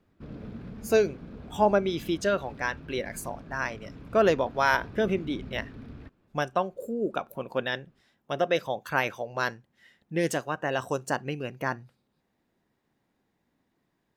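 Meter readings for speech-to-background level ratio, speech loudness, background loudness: 15.5 dB, -29.0 LUFS, -44.5 LUFS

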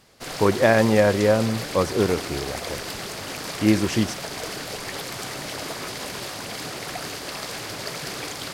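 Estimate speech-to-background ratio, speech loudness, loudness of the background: 9.5 dB, -21.5 LUFS, -31.0 LUFS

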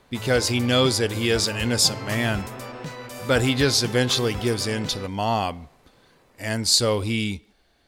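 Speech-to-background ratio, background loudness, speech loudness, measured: 12.5 dB, -34.5 LUFS, -22.0 LUFS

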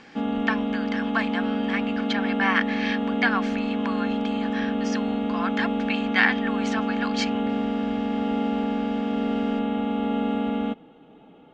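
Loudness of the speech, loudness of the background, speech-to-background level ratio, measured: -28.5 LUFS, -26.0 LUFS, -2.5 dB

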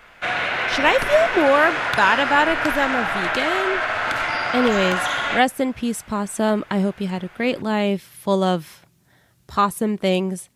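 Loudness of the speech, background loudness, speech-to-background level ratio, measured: -21.0 LUFS, -22.0 LUFS, 1.0 dB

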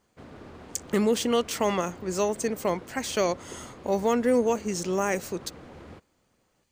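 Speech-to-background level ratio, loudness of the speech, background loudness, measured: 19.5 dB, -27.0 LUFS, -46.5 LUFS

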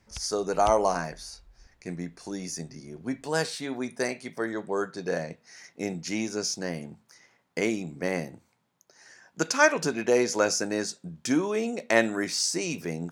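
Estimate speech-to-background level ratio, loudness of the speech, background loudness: 17.0 dB, -28.5 LUFS, -45.5 LUFS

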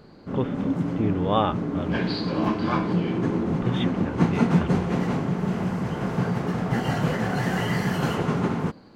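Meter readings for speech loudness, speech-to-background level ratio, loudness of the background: -30.0 LUFS, -4.5 dB, -25.5 LUFS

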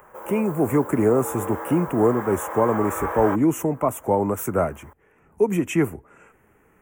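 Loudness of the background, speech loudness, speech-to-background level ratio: -32.0 LUFS, -22.5 LUFS, 9.5 dB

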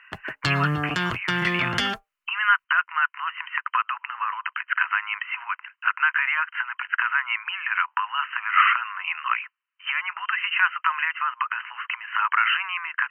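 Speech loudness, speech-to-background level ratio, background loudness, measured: -24.5 LUFS, 1.0 dB, -25.5 LUFS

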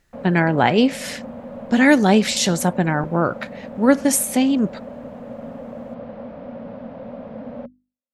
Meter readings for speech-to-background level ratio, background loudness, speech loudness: 17.0 dB, -35.0 LUFS, -18.0 LUFS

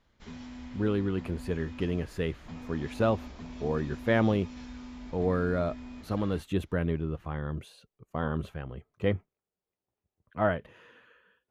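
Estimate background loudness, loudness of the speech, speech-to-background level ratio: -45.0 LUFS, -31.5 LUFS, 13.5 dB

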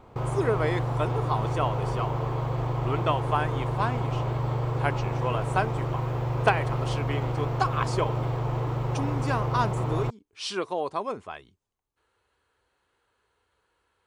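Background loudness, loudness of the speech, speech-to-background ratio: -29.0 LUFS, -31.0 LUFS, -2.0 dB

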